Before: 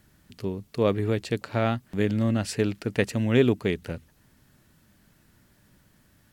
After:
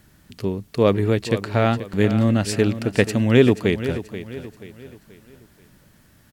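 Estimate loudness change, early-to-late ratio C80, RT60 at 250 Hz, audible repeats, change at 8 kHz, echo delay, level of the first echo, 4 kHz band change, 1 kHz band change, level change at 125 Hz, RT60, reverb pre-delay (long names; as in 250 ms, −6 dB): +6.0 dB, no reverb audible, no reverb audible, 3, +6.5 dB, 482 ms, −12.5 dB, +6.5 dB, +6.5 dB, +6.5 dB, no reverb audible, no reverb audible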